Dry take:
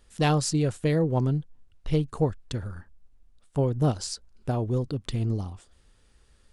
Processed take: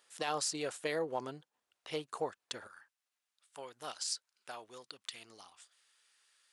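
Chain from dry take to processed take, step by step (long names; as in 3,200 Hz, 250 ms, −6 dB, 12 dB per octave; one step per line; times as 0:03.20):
high-pass filter 690 Hz 12 dB per octave, from 0:02.67 1,500 Hz
brickwall limiter −23 dBFS, peak gain reduction 10 dB
level −1 dB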